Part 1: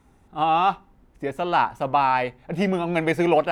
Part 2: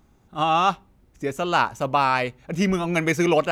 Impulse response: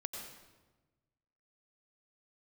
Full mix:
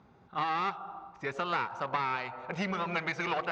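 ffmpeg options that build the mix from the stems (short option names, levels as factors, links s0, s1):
-filter_complex "[0:a]lowpass=f=1300:w=0.5412,lowpass=f=1300:w=1.3066,volume=0.562,asplit=2[s0][s1];[s1]volume=0.473[s2];[1:a]volume=-1,volume=0.944,asplit=2[s3][s4];[s4]volume=0.0668[s5];[2:a]atrim=start_sample=2205[s6];[s2][s5]amix=inputs=2:normalize=0[s7];[s7][s6]afir=irnorm=-1:irlink=0[s8];[s0][s3][s8]amix=inputs=3:normalize=0,aeval=exprs='clip(val(0),-1,0.0398)':c=same,highpass=120,equalizer=f=290:t=q:w=4:g=-7,equalizer=f=1400:t=q:w=4:g=3,equalizer=f=3100:t=q:w=4:g=-4,lowpass=f=4500:w=0.5412,lowpass=f=4500:w=1.3066,acompressor=threshold=0.0355:ratio=5"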